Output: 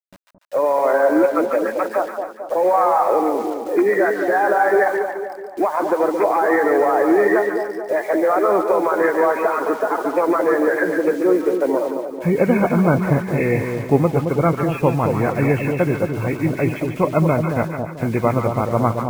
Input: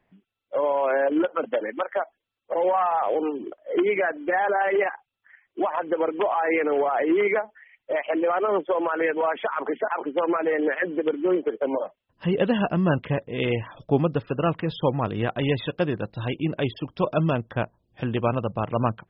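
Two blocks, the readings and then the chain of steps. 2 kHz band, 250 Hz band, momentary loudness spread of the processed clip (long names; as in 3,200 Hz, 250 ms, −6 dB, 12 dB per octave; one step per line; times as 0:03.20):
+5.5 dB, +7.0 dB, 7 LU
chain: hearing-aid frequency compression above 1,400 Hz 1.5 to 1
bit reduction 8 bits
echo with a time of its own for lows and highs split 930 Hz, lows 220 ms, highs 144 ms, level −5.5 dB
level +5.5 dB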